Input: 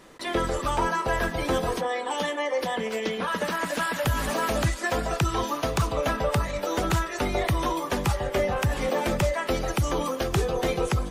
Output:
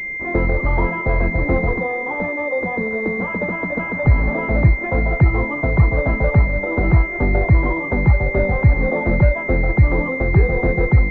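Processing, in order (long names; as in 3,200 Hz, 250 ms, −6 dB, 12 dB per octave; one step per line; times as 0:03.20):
low-shelf EQ 190 Hz +11.5 dB
switching amplifier with a slow clock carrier 2,100 Hz
level +4 dB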